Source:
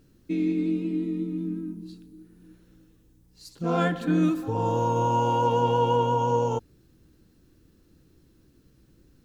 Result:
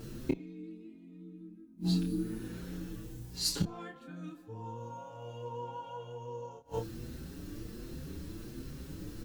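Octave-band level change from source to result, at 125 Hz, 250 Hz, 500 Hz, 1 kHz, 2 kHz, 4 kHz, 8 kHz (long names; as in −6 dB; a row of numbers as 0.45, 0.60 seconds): −9.5 dB, −10.5 dB, −16.0 dB, −20.0 dB, −13.5 dB, +1.0 dB, can't be measured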